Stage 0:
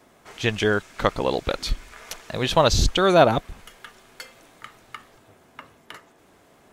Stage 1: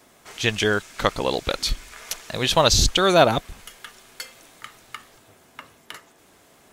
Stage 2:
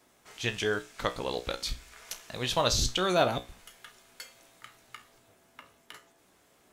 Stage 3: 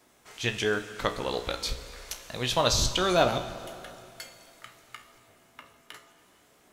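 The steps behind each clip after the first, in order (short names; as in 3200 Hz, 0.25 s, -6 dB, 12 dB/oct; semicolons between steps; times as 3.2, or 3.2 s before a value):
high shelf 2700 Hz +9 dB; gain -1 dB
resonator 61 Hz, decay 0.28 s, harmonics all, mix 70%; gain -4.5 dB
plate-style reverb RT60 2.7 s, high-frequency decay 0.85×, DRR 10.5 dB; gain +2 dB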